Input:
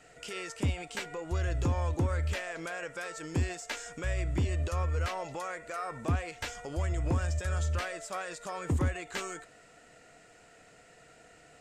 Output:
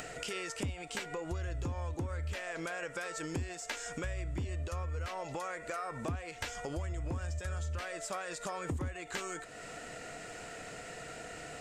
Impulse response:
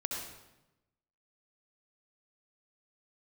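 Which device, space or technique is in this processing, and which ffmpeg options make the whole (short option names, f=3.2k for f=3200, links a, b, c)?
upward and downward compression: -af "acompressor=mode=upward:threshold=-42dB:ratio=2.5,acompressor=threshold=-41dB:ratio=5,volume=5dB"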